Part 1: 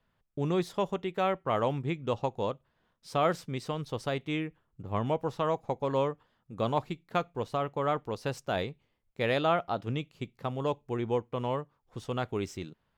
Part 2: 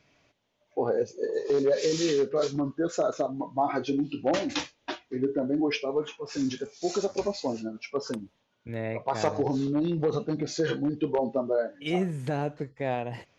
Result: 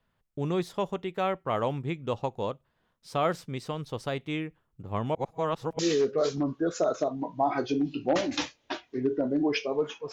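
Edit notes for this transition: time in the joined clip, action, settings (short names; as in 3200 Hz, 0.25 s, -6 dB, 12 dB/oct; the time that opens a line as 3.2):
part 1
5.15–5.79 reverse
5.79 switch to part 2 from 1.97 s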